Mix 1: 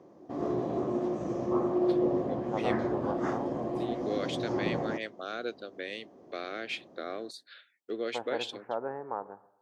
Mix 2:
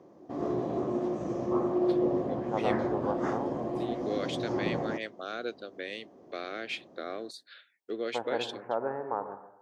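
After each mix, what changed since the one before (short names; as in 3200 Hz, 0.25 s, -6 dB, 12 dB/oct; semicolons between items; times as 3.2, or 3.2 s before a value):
second voice: send +11.5 dB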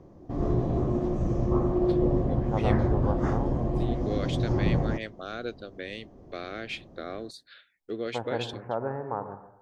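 master: remove HPF 280 Hz 12 dB/oct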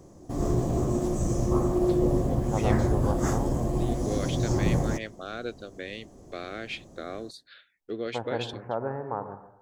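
background: remove air absorption 280 m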